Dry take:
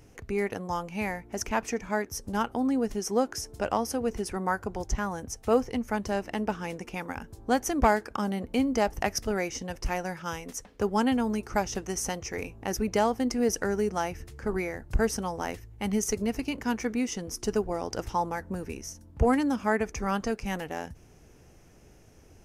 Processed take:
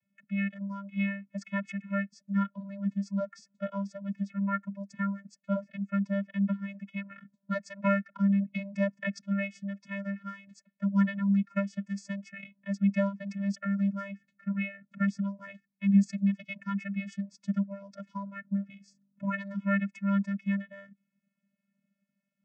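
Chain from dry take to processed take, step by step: expander on every frequency bin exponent 1.5; high-order bell 1.9 kHz +13 dB 1 oct; vocoder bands 16, square 198 Hz

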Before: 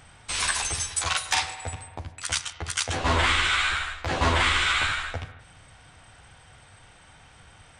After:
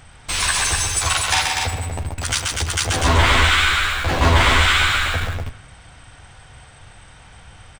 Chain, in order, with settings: loudspeakers at several distances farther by 45 m -5 dB, 84 m -5 dB; in parallel at -12 dB: Schmitt trigger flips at -36 dBFS; on the sum: bass shelf 81 Hz +7.5 dB; trim +4 dB

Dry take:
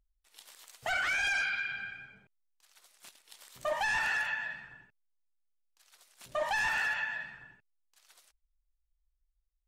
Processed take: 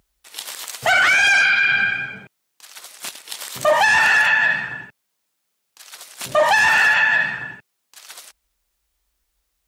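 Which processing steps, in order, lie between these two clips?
high-pass 110 Hz 12 dB/octave; loudness maximiser +30 dB; trim -7.5 dB

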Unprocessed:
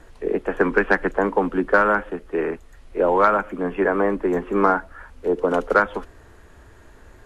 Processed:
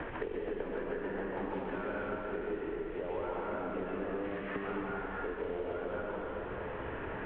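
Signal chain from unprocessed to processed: CVSD coder 16 kbps; 1.37–1.91 s: treble shelf 2.4 kHz +9.5 dB; 4.12–4.56 s: high-pass 1.3 kHz 24 dB/octave; compression 4:1, threshold -35 dBFS, peak gain reduction 16.5 dB; Chebyshev shaper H 4 -22 dB, 6 -34 dB, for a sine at -21.5 dBFS; distance through air 210 m; plate-style reverb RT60 2.4 s, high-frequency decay 0.75×, pre-delay 115 ms, DRR -6 dB; three bands compressed up and down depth 100%; trim -7.5 dB

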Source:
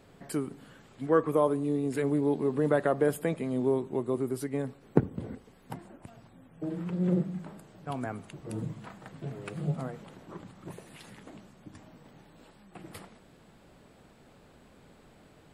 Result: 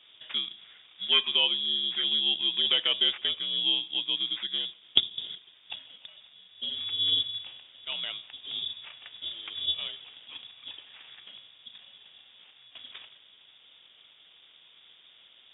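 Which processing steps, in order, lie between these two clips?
sample-and-hold 12×; frequency inversion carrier 3.6 kHz

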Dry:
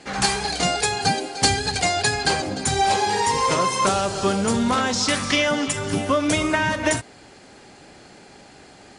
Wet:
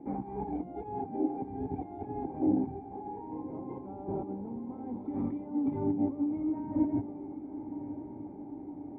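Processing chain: peak limiter -13 dBFS, peak gain reduction 8.5 dB; compressor with a negative ratio -27 dBFS, ratio -0.5; cascade formant filter u; echo that smears into a reverb 1073 ms, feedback 63%, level -11.5 dB; trim +3.5 dB

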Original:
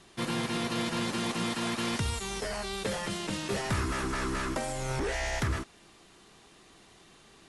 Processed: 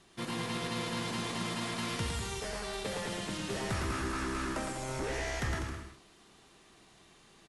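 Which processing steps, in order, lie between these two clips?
bouncing-ball echo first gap 110 ms, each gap 0.8×, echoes 5; trim -5.5 dB

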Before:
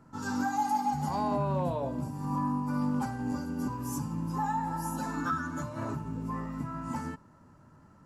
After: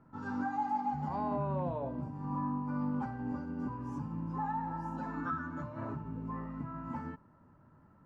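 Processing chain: low-pass 2.1 kHz 12 dB/octave; trim -4.5 dB

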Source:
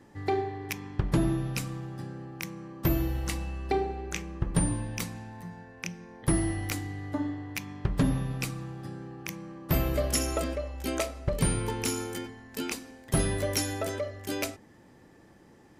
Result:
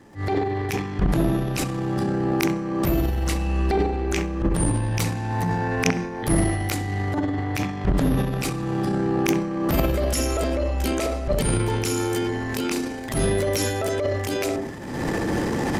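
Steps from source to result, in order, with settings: recorder AGC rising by 50 dB/s; crackle 29 per s -51 dBFS; on a send: band-passed feedback delay 66 ms, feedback 47%, band-pass 320 Hz, level -3 dB; on the sum: transient shaper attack -10 dB, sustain +10 dB; loudspeaker Doppler distortion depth 0.13 ms; trim +3.5 dB

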